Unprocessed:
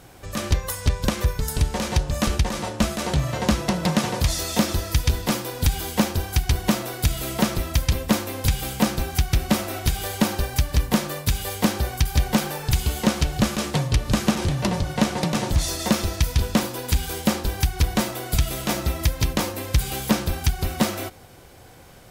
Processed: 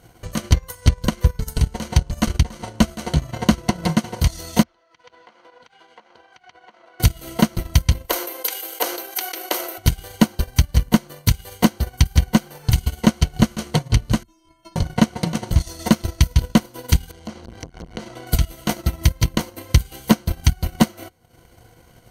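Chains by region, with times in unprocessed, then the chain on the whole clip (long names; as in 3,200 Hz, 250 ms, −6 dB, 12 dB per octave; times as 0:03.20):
0:04.63–0:07.00: high-pass filter 820 Hz + head-to-tape spacing loss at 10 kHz 36 dB + downward compressor 12 to 1, threshold −42 dBFS
0:08.05–0:09.78: Butterworth high-pass 340 Hz 48 dB per octave + parametric band 13,000 Hz +10 dB 0.46 octaves + level that may fall only so fast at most 26 dB per second
0:14.23–0:14.76: stiff-string resonator 320 Hz, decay 0.85 s, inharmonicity 0.008 + flutter between parallel walls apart 6.7 metres, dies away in 0.3 s
0:17.11–0:18.27: low-pass filter 6,300 Hz + downward compressor 3 to 1, threshold −28 dBFS + saturating transformer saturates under 970 Hz
whole clip: EQ curve with evenly spaced ripples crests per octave 1.9, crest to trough 8 dB; transient designer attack +10 dB, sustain −11 dB; low-shelf EQ 350 Hz +3 dB; level −6 dB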